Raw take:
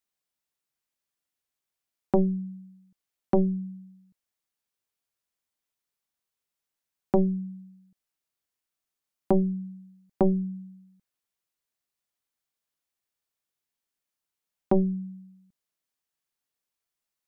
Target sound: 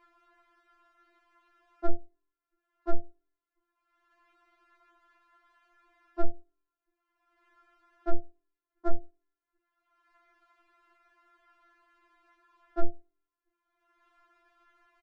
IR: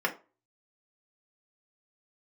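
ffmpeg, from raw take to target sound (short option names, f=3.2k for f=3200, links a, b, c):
-filter_complex "[0:a]lowpass=f=1.2k:t=q:w=1.7,bandreject=f=60:t=h:w=6,bandreject=f=120:t=h:w=6,bandreject=f=180:t=h:w=6,bandreject=f=240:t=h:w=6,bandreject=f=300:t=h:w=6,bandreject=f=360:t=h:w=6,bandreject=f=420:t=h:w=6,bandreject=f=480:t=h:w=6,bandreject=f=540:t=h:w=6,bandreject=f=600:t=h:w=6,asetrate=50715,aresample=44100,acompressor=mode=upward:threshold=-43dB:ratio=2.5,asplit=2[a][b];[1:a]atrim=start_sample=2205[c];[b][c]afir=irnorm=-1:irlink=0,volume=-29.5dB[d];[a][d]amix=inputs=2:normalize=0,afftfilt=real='re*4*eq(mod(b,16),0)':imag='im*4*eq(mod(b,16),0)':win_size=2048:overlap=0.75,volume=2dB"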